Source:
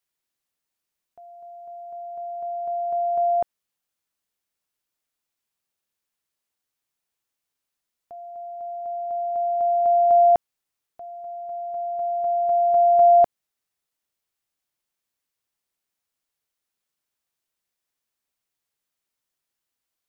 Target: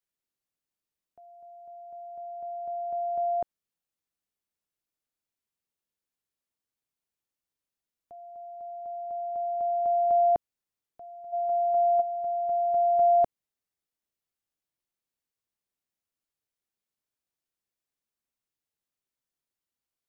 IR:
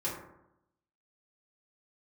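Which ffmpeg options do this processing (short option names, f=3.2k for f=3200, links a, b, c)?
-filter_complex "[0:a]asplit=3[a][b][c];[a]afade=t=out:st=11.32:d=0.02[d];[b]equalizer=f=890:w=0.32:g=13,afade=t=in:st=11.32:d=0.02,afade=t=out:st=12:d=0.02[e];[c]afade=t=in:st=12:d=0.02[f];[d][e][f]amix=inputs=3:normalize=0,acrossover=split=530[g][h];[g]acontrast=38[i];[i][h]amix=inputs=2:normalize=0,volume=-8.5dB"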